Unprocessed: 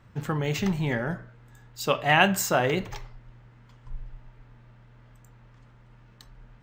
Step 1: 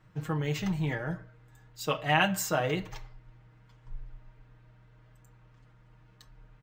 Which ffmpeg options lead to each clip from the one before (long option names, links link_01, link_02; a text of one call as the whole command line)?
ffmpeg -i in.wav -af "aecho=1:1:6.4:0.75,volume=-7dB" out.wav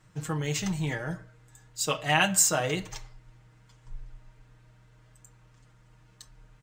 ffmpeg -i in.wav -af "equalizer=frequency=7900:width=0.75:gain=14.5" out.wav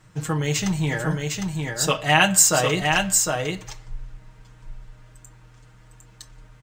ffmpeg -i in.wav -af "aecho=1:1:756:0.631,volume=6.5dB" out.wav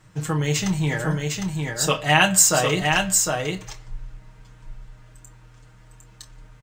ffmpeg -i in.wav -filter_complex "[0:a]asplit=2[link_01][link_02];[link_02]adelay=27,volume=-12dB[link_03];[link_01][link_03]amix=inputs=2:normalize=0" out.wav